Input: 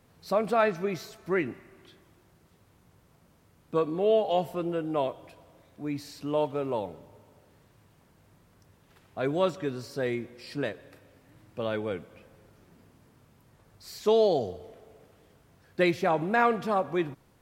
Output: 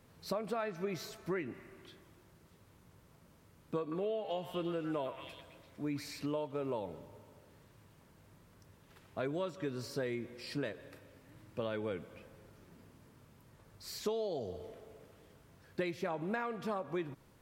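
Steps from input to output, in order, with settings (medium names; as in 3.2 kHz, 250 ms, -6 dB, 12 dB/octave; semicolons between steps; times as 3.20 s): 3.80–6.26 s: repeats whose band climbs or falls 114 ms, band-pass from 1.6 kHz, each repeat 0.7 oct, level -1.5 dB; compression 10:1, threshold -32 dBFS, peak gain reduction 14.5 dB; band-stop 740 Hz, Q 12; trim -1 dB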